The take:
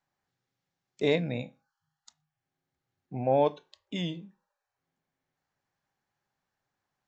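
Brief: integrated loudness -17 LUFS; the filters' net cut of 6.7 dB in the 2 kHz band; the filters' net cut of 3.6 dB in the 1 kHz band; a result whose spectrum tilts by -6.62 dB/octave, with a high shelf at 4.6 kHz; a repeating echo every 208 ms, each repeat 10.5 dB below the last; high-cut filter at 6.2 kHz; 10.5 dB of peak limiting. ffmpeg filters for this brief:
-af "lowpass=6200,equalizer=f=1000:t=o:g=-4,equalizer=f=2000:t=o:g=-6,highshelf=f=4600:g=-5,alimiter=level_in=1.12:limit=0.0631:level=0:latency=1,volume=0.891,aecho=1:1:208|416|624:0.299|0.0896|0.0269,volume=10.6"

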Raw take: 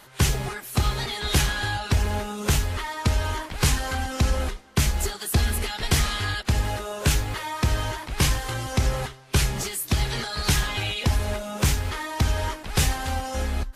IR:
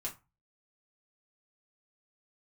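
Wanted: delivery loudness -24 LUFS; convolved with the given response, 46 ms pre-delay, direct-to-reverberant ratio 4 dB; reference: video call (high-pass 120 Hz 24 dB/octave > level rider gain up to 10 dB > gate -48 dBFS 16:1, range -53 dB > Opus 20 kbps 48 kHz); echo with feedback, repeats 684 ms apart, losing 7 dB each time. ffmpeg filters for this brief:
-filter_complex "[0:a]aecho=1:1:684|1368|2052|2736|3420:0.447|0.201|0.0905|0.0407|0.0183,asplit=2[s0][s1];[1:a]atrim=start_sample=2205,adelay=46[s2];[s1][s2]afir=irnorm=-1:irlink=0,volume=0.631[s3];[s0][s3]amix=inputs=2:normalize=0,highpass=f=120:w=0.5412,highpass=f=120:w=1.3066,dynaudnorm=m=3.16,agate=range=0.00224:threshold=0.00398:ratio=16,volume=0.944" -ar 48000 -c:a libopus -b:a 20k

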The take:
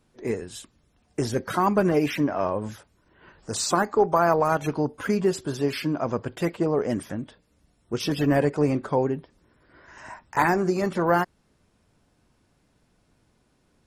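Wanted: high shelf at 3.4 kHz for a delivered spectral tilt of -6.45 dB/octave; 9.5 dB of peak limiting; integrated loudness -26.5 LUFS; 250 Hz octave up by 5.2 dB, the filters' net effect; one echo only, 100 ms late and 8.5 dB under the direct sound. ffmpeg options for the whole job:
-af "equalizer=f=250:t=o:g=7,highshelf=f=3400:g=-7,alimiter=limit=0.168:level=0:latency=1,aecho=1:1:100:0.376,volume=0.944"

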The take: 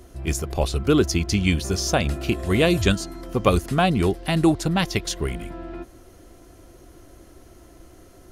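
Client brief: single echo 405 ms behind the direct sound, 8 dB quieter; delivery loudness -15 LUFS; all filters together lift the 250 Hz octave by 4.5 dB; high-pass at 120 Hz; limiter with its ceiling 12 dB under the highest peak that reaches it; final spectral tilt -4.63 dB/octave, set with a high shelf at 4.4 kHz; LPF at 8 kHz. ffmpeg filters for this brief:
-af "highpass=120,lowpass=8000,equalizer=f=250:t=o:g=7,highshelf=f=4400:g=7.5,alimiter=limit=0.266:level=0:latency=1,aecho=1:1:405:0.398,volume=2.51"

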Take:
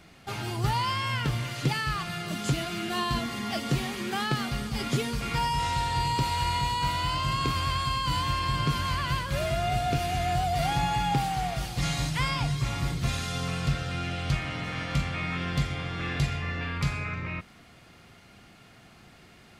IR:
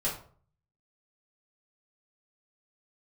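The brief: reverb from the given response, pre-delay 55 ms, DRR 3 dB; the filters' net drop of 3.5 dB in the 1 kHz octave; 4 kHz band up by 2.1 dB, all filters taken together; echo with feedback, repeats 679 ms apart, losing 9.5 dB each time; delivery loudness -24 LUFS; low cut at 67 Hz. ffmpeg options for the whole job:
-filter_complex "[0:a]highpass=67,equalizer=f=1000:t=o:g=-4.5,equalizer=f=4000:t=o:g=3,aecho=1:1:679|1358|2037|2716:0.335|0.111|0.0365|0.012,asplit=2[s0][s1];[1:a]atrim=start_sample=2205,adelay=55[s2];[s1][s2]afir=irnorm=-1:irlink=0,volume=0.335[s3];[s0][s3]amix=inputs=2:normalize=0,volume=1.41"

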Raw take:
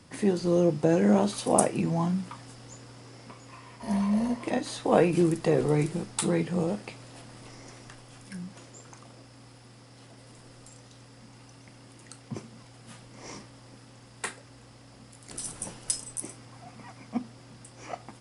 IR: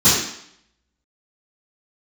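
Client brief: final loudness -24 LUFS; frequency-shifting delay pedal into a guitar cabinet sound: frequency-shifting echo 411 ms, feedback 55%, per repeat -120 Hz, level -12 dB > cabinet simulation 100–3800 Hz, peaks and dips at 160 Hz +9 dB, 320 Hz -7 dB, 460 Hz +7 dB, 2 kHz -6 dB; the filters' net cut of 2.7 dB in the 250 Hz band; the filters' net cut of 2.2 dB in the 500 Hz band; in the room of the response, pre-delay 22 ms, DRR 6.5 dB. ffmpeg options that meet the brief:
-filter_complex "[0:a]equalizer=f=250:t=o:g=-6.5,equalizer=f=500:t=o:g=-4.5,asplit=2[s0][s1];[1:a]atrim=start_sample=2205,adelay=22[s2];[s1][s2]afir=irnorm=-1:irlink=0,volume=0.0376[s3];[s0][s3]amix=inputs=2:normalize=0,asplit=7[s4][s5][s6][s7][s8][s9][s10];[s5]adelay=411,afreqshift=-120,volume=0.251[s11];[s6]adelay=822,afreqshift=-240,volume=0.138[s12];[s7]adelay=1233,afreqshift=-360,volume=0.0759[s13];[s8]adelay=1644,afreqshift=-480,volume=0.0417[s14];[s9]adelay=2055,afreqshift=-600,volume=0.0229[s15];[s10]adelay=2466,afreqshift=-720,volume=0.0126[s16];[s4][s11][s12][s13][s14][s15][s16]amix=inputs=7:normalize=0,highpass=100,equalizer=f=160:t=q:w=4:g=9,equalizer=f=320:t=q:w=4:g=-7,equalizer=f=460:t=q:w=4:g=7,equalizer=f=2000:t=q:w=4:g=-6,lowpass=f=3800:w=0.5412,lowpass=f=3800:w=1.3066,volume=1.19"

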